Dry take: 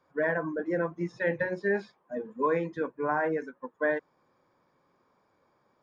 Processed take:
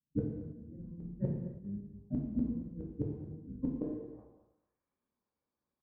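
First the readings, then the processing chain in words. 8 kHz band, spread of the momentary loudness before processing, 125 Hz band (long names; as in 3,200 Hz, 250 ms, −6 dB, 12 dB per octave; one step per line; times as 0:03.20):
can't be measured, 7 LU, +2.5 dB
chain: sub-octave generator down 2 octaves, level +2 dB
noise gate −58 dBFS, range −32 dB
parametric band 240 Hz +9.5 dB 0.86 octaves
mains-hum notches 60/120 Hz
low-pass filter sweep 190 Hz → 4,600 Hz, 0:03.60–0:05.14
gate with flip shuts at −25 dBFS, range −27 dB
repeating echo 222 ms, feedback 22%, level −17.5 dB
reverb whose tail is shaped and stops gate 350 ms falling, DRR −2.5 dB
level +2.5 dB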